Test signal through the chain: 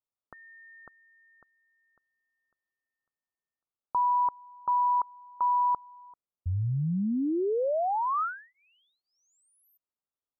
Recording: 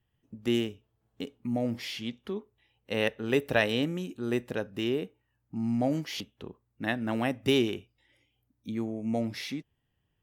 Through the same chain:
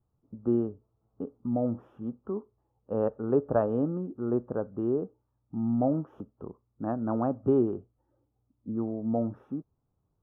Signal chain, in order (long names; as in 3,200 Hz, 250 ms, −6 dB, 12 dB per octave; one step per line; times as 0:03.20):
elliptic low-pass filter 1,300 Hz, stop band 40 dB
level +2 dB